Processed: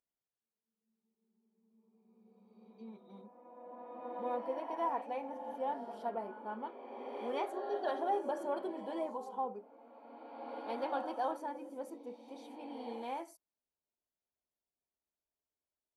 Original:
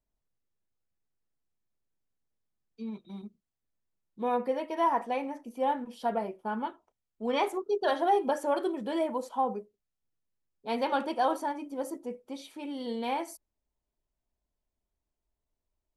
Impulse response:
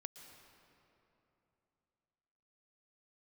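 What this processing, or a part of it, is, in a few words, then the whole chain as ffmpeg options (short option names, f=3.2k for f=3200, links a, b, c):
ghost voice: -filter_complex "[0:a]tiltshelf=f=1.1k:g=7,areverse[a];[1:a]atrim=start_sample=2205[b];[a][b]afir=irnorm=-1:irlink=0,areverse,highpass=f=790:p=1,volume=-2dB"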